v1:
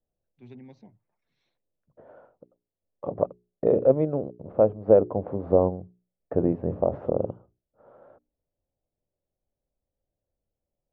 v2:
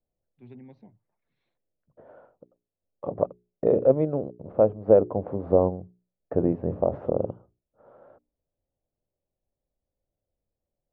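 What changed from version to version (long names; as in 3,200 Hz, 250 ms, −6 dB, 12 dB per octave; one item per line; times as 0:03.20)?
first voice: add high-frequency loss of the air 260 metres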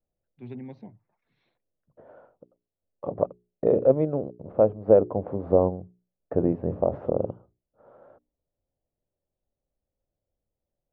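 first voice +7.5 dB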